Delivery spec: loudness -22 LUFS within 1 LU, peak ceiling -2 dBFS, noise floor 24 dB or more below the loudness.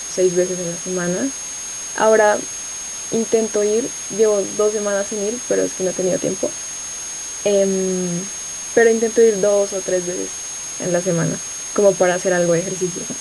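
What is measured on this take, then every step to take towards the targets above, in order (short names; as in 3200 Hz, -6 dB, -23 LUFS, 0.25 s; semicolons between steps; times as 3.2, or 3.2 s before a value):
steady tone 6500 Hz; tone level -27 dBFS; noise floor -29 dBFS; noise floor target -43 dBFS; loudness -19.0 LUFS; peak -1.5 dBFS; loudness target -22.0 LUFS
-> notch 6500 Hz, Q 30; noise print and reduce 14 dB; gain -3 dB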